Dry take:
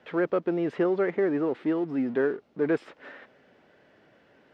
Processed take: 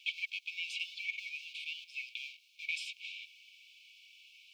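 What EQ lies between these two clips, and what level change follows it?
linear-phase brick-wall high-pass 2,200 Hz
+14.0 dB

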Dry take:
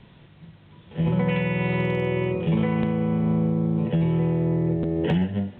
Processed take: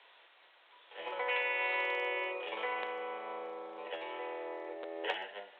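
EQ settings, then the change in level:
Bessel high-pass filter 850 Hz, order 6
high-frequency loss of the air 76 metres
0.0 dB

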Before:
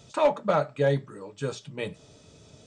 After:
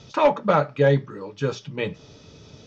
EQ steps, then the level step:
Butterworth low-pass 6,100 Hz 48 dB per octave
parametric band 650 Hz −6.5 dB 0.26 octaves
dynamic equaliser 4,100 Hz, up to −5 dB, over −55 dBFS, Q 3.2
+6.5 dB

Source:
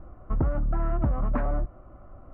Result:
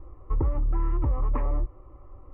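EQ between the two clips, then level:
high-frequency loss of the air 180 metres
phaser with its sweep stopped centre 1,000 Hz, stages 8
+2.0 dB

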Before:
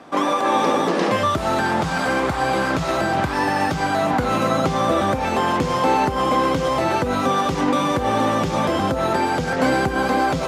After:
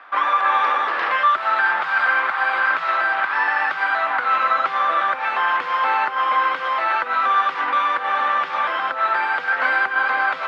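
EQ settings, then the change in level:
high-pass with resonance 1,400 Hz, resonance Q 1.9
high-frequency loss of the air 400 metres
+5.0 dB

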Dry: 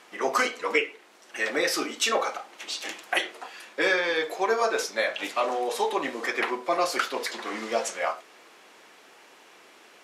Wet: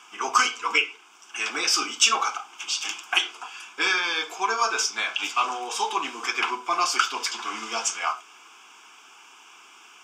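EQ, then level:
high-pass filter 830 Hz 6 dB per octave
dynamic equaliser 4,500 Hz, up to +6 dB, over −47 dBFS, Q 2.2
phaser with its sweep stopped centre 2,800 Hz, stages 8
+7.5 dB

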